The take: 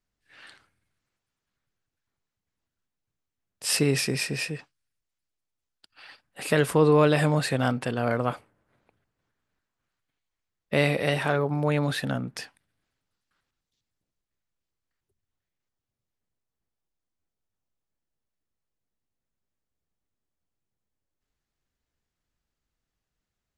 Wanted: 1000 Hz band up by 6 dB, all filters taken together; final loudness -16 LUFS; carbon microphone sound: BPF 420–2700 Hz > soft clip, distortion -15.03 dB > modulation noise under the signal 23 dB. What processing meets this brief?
BPF 420–2700 Hz; bell 1000 Hz +8 dB; soft clip -14 dBFS; modulation noise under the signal 23 dB; gain +11 dB

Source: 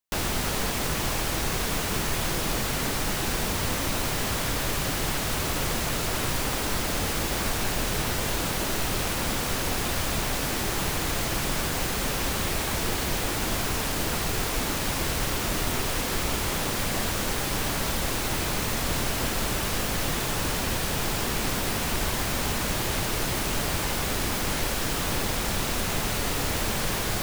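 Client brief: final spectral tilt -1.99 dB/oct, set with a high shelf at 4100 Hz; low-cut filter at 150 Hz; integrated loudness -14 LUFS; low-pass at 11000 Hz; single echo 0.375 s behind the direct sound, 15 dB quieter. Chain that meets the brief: HPF 150 Hz; LPF 11000 Hz; high shelf 4100 Hz +9 dB; echo 0.375 s -15 dB; gain +10 dB

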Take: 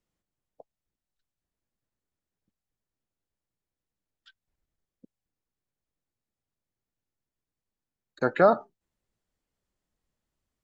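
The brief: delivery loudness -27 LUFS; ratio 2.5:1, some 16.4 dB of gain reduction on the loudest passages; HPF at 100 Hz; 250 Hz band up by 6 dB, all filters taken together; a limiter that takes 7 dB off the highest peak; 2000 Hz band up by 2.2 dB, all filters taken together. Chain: HPF 100 Hz; bell 250 Hz +8 dB; bell 2000 Hz +3 dB; compressor 2.5:1, threshold -38 dBFS; gain +13 dB; limiter -13.5 dBFS

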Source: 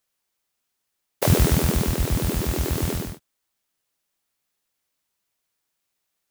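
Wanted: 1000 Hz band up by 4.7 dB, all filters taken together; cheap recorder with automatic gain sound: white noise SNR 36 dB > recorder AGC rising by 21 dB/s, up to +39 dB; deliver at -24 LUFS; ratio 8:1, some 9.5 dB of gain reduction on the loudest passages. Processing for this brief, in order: bell 1000 Hz +6 dB; compressor 8:1, threshold -22 dBFS; white noise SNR 36 dB; recorder AGC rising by 21 dB/s, up to +39 dB; gain +1.5 dB

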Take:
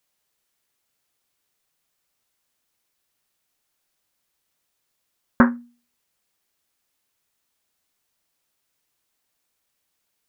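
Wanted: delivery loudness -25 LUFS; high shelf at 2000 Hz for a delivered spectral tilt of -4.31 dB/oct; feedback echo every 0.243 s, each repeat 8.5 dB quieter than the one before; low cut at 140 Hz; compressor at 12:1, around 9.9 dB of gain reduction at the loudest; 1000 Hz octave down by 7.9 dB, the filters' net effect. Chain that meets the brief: HPF 140 Hz; bell 1000 Hz -8.5 dB; high shelf 2000 Hz -5 dB; compressor 12:1, threshold -21 dBFS; feedback echo 0.243 s, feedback 38%, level -8.5 dB; gain +8.5 dB

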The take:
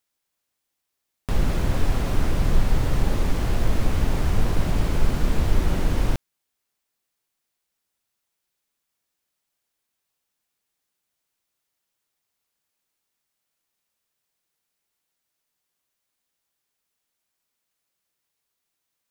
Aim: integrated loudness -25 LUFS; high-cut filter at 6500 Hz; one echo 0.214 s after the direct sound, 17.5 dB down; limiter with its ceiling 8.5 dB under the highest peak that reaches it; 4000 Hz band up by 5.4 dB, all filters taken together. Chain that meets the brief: LPF 6500 Hz; bell 4000 Hz +7.5 dB; limiter -14.5 dBFS; echo 0.214 s -17.5 dB; gain +3 dB

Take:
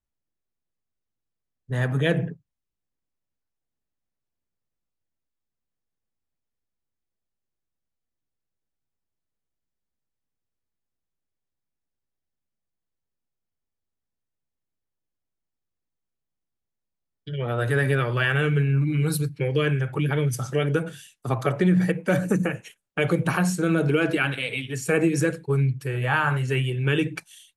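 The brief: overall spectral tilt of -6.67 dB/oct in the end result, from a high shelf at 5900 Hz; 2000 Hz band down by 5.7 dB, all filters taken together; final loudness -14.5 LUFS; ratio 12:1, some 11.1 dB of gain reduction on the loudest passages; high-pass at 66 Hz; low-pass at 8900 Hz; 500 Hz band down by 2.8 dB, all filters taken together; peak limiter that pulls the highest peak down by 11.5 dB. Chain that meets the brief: HPF 66 Hz; LPF 8900 Hz; bell 500 Hz -3 dB; bell 2000 Hz -7 dB; high shelf 5900 Hz -6.5 dB; compressor 12:1, threshold -29 dBFS; gain +24 dB; limiter -6.5 dBFS

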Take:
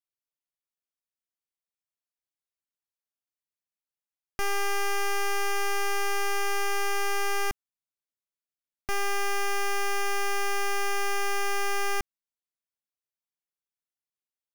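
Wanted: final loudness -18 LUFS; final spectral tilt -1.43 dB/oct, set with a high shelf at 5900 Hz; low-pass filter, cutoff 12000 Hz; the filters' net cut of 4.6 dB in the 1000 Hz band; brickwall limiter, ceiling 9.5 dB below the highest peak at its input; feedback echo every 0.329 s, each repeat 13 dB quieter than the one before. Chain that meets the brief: LPF 12000 Hz; bell 1000 Hz -6.5 dB; high shelf 5900 Hz +8.5 dB; limiter -27 dBFS; feedback echo 0.329 s, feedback 22%, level -13 dB; gain +20.5 dB

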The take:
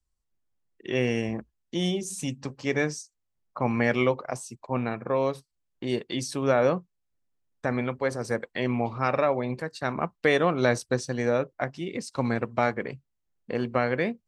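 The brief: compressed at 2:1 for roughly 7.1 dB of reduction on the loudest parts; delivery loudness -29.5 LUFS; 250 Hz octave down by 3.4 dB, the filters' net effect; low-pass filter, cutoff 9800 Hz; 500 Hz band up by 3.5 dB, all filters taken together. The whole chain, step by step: LPF 9800 Hz; bell 250 Hz -6 dB; bell 500 Hz +5.5 dB; compressor 2:1, threshold -28 dBFS; gain +1.5 dB

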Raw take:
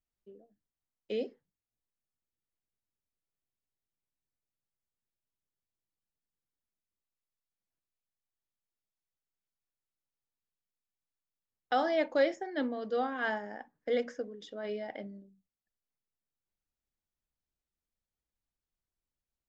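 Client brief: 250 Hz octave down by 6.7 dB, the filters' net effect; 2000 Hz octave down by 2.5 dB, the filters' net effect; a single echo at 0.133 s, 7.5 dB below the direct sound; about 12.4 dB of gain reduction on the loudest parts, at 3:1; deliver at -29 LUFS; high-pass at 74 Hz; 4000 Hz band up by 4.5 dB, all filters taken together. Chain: HPF 74 Hz; bell 250 Hz -8 dB; bell 2000 Hz -4.5 dB; bell 4000 Hz +7.5 dB; compressor 3:1, threshold -41 dBFS; echo 0.133 s -7.5 dB; gain +14.5 dB

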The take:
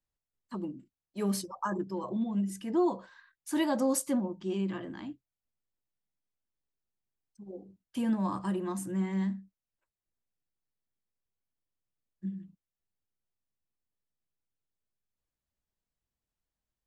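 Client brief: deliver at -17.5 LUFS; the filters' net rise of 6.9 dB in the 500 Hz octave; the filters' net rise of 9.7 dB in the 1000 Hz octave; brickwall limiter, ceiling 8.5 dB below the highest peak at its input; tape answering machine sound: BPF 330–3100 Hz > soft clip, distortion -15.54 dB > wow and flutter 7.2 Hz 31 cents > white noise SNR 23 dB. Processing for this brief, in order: bell 500 Hz +8.5 dB; bell 1000 Hz +9 dB; limiter -19 dBFS; BPF 330–3100 Hz; soft clip -24.5 dBFS; wow and flutter 7.2 Hz 31 cents; white noise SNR 23 dB; gain +18 dB

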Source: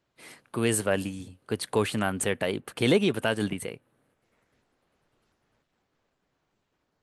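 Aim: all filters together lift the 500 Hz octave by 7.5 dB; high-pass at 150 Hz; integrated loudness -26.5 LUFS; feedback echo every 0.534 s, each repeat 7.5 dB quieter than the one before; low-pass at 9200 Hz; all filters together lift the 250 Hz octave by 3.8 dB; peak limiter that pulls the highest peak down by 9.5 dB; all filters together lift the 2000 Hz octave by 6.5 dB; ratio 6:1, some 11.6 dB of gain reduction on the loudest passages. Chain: HPF 150 Hz; LPF 9200 Hz; bell 250 Hz +3 dB; bell 500 Hz +8 dB; bell 2000 Hz +8 dB; compressor 6:1, threshold -23 dBFS; limiter -20.5 dBFS; feedback echo 0.534 s, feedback 42%, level -7.5 dB; gain +6 dB

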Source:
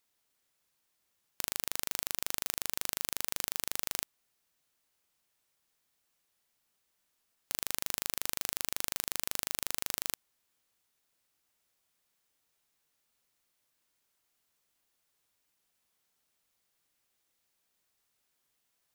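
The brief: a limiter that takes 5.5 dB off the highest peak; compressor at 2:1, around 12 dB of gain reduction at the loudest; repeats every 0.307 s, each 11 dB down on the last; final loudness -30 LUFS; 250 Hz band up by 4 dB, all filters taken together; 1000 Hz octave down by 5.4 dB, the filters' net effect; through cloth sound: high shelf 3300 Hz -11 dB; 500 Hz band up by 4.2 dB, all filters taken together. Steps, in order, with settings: bell 250 Hz +3.5 dB; bell 500 Hz +7 dB; bell 1000 Hz -8.5 dB; compressor 2:1, threshold -49 dBFS; limiter -20.5 dBFS; high shelf 3300 Hz -11 dB; feedback echo 0.307 s, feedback 28%, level -11 dB; gain +28.5 dB

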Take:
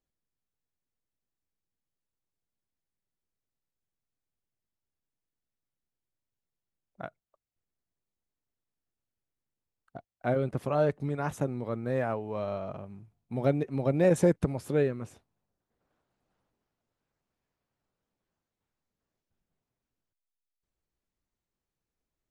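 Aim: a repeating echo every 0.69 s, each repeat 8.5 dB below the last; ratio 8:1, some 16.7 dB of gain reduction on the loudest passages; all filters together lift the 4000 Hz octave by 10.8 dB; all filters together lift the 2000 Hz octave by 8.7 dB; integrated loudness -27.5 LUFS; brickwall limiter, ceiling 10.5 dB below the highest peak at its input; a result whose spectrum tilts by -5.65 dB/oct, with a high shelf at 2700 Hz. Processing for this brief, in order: bell 2000 Hz +8 dB; high shelf 2700 Hz +4.5 dB; bell 4000 Hz +7 dB; compressor 8:1, threshold -35 dBFS; limiter -31.5 dBFS; feedback echo 0.69 s, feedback 38%, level -8.5 dB; gain +16.5 dB

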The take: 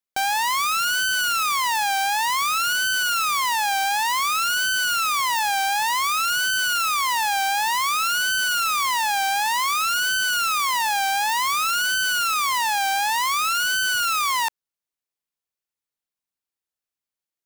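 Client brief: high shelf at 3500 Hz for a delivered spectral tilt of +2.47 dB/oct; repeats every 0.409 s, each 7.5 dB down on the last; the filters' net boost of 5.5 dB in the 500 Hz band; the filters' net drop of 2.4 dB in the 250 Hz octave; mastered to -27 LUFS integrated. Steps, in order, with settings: bell 250 Hz -7 dB; bell 500 Hz +8.5 dB; high shelf 3500 Hz +5.5 dB; feedback echo 0.409 s, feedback 42%, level -7.5 dB; gain -10 dB

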